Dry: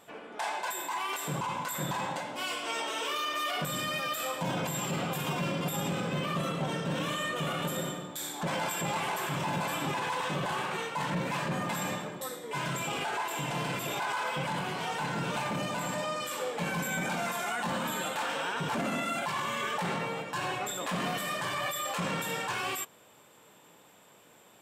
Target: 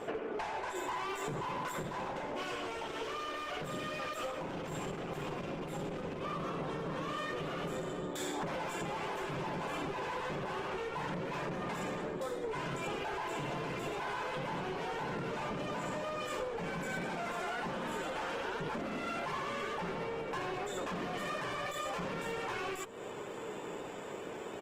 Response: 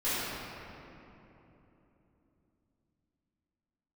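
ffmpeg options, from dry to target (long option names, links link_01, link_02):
-filter_complex "[0:a]asplit=2[link_01][link_02];[link_02]aeval=exprs='0.0251*(abs(mod(val(0)/0.0251+3,4)-2)-1)':channel_layout=same,volume=-3.5dB[link_03];[link_01][link_03]amix=inputs=2:normalize=0,adynamicsmooth=sensitivity=4.5:basefreq=7900,equalizer=frequency=400:width_type=o:width=0.67:gain=10,equalizer=frequency=4000:width_type=o:width=0.67:gain=-6,equalizer=frequency=10000:width_type=o:width=0.67:gain=-11,aeval=exprs='clip(val(0),-1,0.0266)':channel_layout=same,asplit=3[link_04][link_05][link_06];[link_04]afade=type=out:start_time=6.18:duration=0.02[link_07];[link_05]equalizer=frequency=1100:width_type=o:width=0.27:gain=7.5,afade=type=in:start_time=6.18:duration=0.02,afade=type=out:start_time=7.29:duration=0.02[link_08];[link_06]afade=type=in:start_time=7.29:duration=0.02[link_09];[link_07][link_08][link_09]amix=inputs=3:normalize=0,acompressor=threshold=-43dB:ratio=20,aresample=32000,aresample=44100,asplit=2[link_10][link_11];[link_11]adelay=614,lowpass=frequency=810:poles=1,volume=-17dB,asplit=2[link_12][link_13];[link_13]adelay=614,lowpass=frequency=810:poles=1,volume=0.36,asplit=2[link_14][link_15];[link_15]adelay=614,lowpass=frequency=810:poles=1,volume=0.36[link_16];[link_10][link_12][link_14][link_16]amix=inputs=4:normalize=0,volume=8.5dB" -ar 48000 -c:a libopus -b:a 16k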